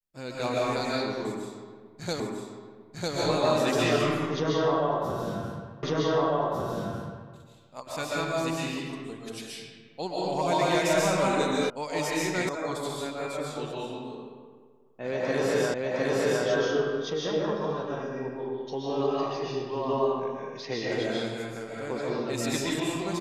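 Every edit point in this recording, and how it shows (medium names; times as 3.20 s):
2.20 s: repeat of the last 0.95 s
5.83 s: repeat of the last 1.5 s
11.70 s: sound stops dead
12.49 s: sound stops dead
15.74 s: repeat of the last 0.71 s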